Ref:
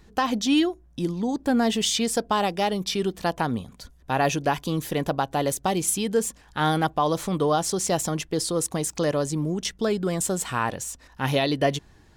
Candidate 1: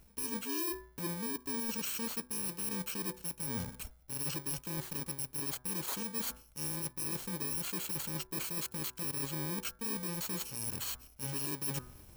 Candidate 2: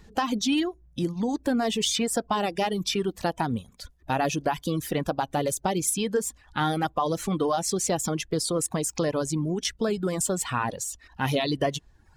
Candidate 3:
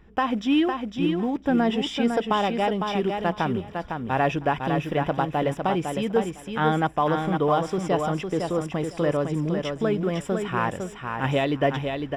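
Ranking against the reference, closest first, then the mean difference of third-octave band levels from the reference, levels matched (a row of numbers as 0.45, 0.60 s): 2, 3, 1; 3.5, 7.5, 12.5 dB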